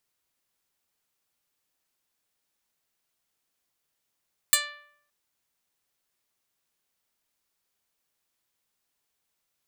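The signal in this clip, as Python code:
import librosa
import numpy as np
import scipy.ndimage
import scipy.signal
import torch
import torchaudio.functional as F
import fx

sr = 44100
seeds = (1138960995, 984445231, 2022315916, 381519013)

y = fx.pluck(sr, length_s=0.57, note=74, decay_s=0.71, pick=0.11, brightness='medium')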